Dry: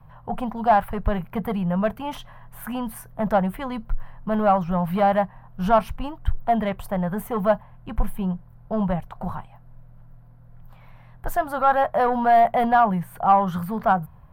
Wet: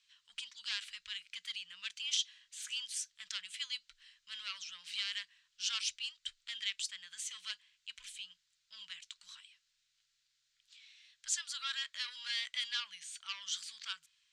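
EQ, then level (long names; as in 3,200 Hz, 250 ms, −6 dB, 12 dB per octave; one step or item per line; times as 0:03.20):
inverse Chebyshev high-pass filter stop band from 820 Hz, stop band 70 dB
low-pass with resonance 7,200 Hz, resonance Q 3.7
high-frequency loss of the air 120 metres
+15.5 dB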